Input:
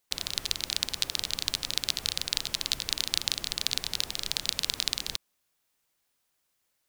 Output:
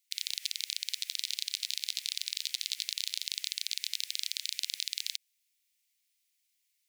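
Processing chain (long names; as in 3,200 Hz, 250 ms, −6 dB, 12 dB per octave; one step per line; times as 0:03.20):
elliptic high-pass filter 2,100 Hz, stop band 80 dB
brickwall limiter −13.5 dBFS, peak gain reduction 8 dB
0:00.93–0:03.30: feedback echo at a low word length 89 ms, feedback 55%, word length 8 bits, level −14 dB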